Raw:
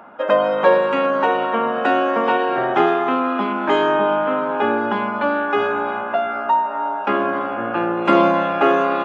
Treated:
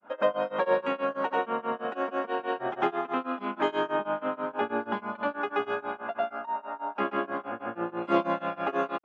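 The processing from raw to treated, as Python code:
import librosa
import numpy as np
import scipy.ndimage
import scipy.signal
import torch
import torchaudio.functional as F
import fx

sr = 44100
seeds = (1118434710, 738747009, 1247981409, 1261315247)

y = fx.granulator(x, sr, seeds[0], grain_ms=184.0, per_s=6.2, spray_ms=100.0, spread_st=0)
y = y * librosa.db_to_amplitude(-8.0)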